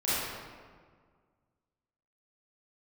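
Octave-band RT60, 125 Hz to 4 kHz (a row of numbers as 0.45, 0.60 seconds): 2.1, 2.0, 1.8, 1.7, 1.4, 1.0 seconds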